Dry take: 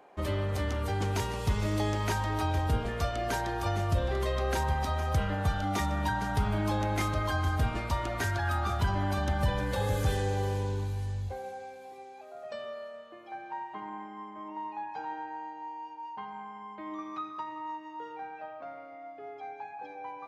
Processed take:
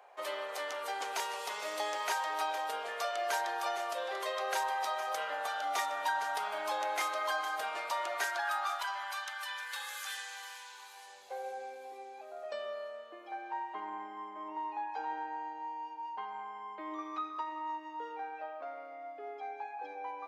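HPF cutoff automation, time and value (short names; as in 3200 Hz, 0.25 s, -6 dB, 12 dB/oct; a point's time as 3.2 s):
HPF 24 dB/oct
8.23 s 560 Hz
9.38 s 1200 Hz
10.68 s 1200 Hz
11.61 s 330 Hz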